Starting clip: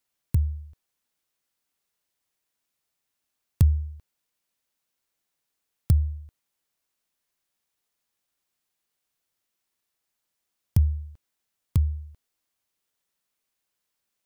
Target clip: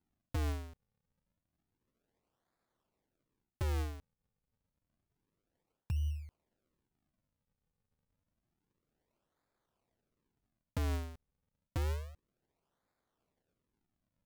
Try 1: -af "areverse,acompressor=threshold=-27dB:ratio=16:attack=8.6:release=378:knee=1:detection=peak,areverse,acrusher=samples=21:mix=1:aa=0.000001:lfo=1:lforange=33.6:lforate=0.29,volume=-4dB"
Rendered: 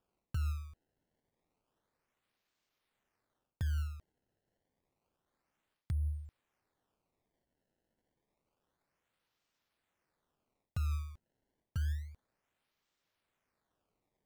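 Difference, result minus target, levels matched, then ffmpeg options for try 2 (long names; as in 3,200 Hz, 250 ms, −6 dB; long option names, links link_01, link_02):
sample-and-hold swept by an LFO: distortion −12 dB
-af "areverse,acompressor=threshold=-27dB:ratio=16:attack=8.6:release=378:knee=1:detection=peak,areverse,acrusher=samples=75:mix=1:aa=0.000001:lfo=1:lforange=120:lforate=0.29,volume=-4dB"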